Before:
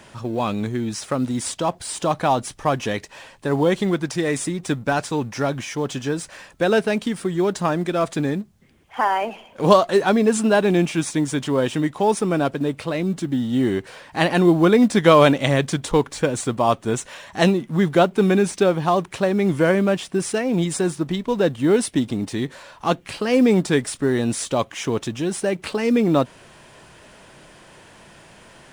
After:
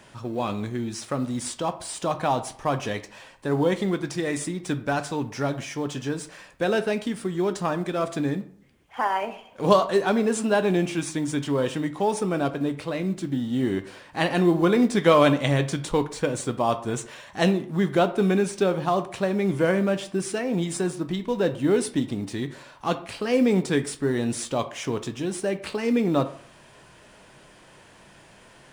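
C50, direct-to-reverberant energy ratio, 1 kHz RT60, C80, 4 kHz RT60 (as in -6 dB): 14.0 dB, 9.0 dB, 0.55 s, 17.5 dB, 0.35 s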